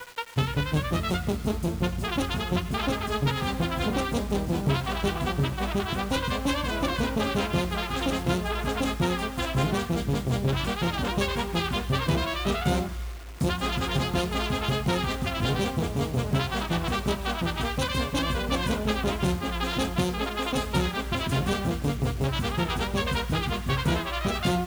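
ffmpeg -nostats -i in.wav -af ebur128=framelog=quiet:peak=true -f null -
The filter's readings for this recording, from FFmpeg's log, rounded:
Integrated loudness:
  I:         -27.5 LUFS
  Threshold: -37.5 LUFS
Loudness range:
  LRA:         0.5 LU
  Threshold: -47.5 LUFS
  LRA low:   -27.7 LUFS
  LRA high:  -27.2 LUFS
True peak:
  Peak:      -14.9 dBFS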